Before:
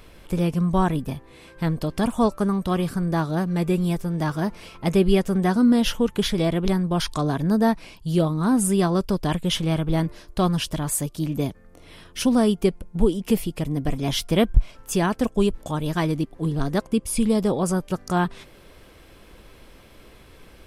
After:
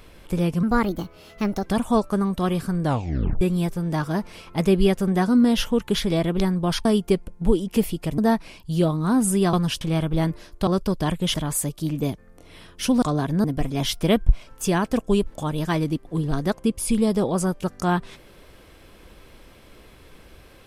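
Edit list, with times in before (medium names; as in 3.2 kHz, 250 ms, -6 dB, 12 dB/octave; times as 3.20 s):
0.63–1.94 s: speed 127%
3.10 s: tape stop 0.59 s
7.13–7.55 s: swap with 12.39–13.72 s
8.90–9.57 s: swap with 10.43–10.71 s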